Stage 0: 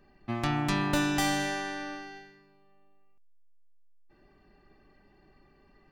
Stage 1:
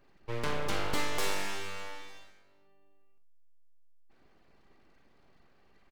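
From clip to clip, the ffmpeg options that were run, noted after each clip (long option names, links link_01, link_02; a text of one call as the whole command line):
ffmpeg -i in.wav -filter_complex "[0:a]aeval=exprs='abs(val(0))':channel_layout=same,asplit=2[link_01][link_02];[link_02]aecho=0:1:43|58:0.282|0.224[link_03];[link_01][link_03]amix=inputs=2:normalize=0,volume=-2.5dB" out.wav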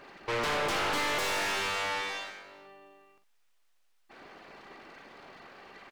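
ffmpeg -i in.wav -filter_complex "[0:a]asplit=2[link_01][link_02];[link_02]highpass=frequency=720:poles=1,volume=34dB,asoftclip=type=tanh:threshold=-15.5dB[link_03];[link_01][link_03]amix=inputs=2:normalize=0,lowpass=frequency=3100:poles=1,volume=-6dB,volume=-6.5dB" out.wav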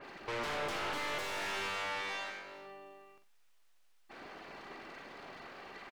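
ffmpeg -i in.wav -filter_complex "[0:a]alimiter=level_in=9dB:limit=-24dB:level=0:latency=1:release=137,volume=-9dB,asplit=2[link_01][link_02];[link_02]adelay=46,volume=-12.5dB[link_03];[link_01][link_03]amix=inputs=2:normalize=0,adynamicequalizer=threshold=0.00251:dfrequency=4200:dqfactor=0.7:tfrequency=4200:tqfactor=0.7:attack=5:release=100:ratio=0.375:range=2:mode=cutabove:tftype=highshelf,volume=1dB" out.wav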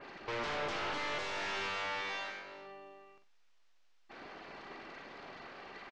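ffmpeg -i in.wav -af "lowpass=frequency=6400:width=0.5412,lowpass=frequency=6400:width=1.3066" out.wav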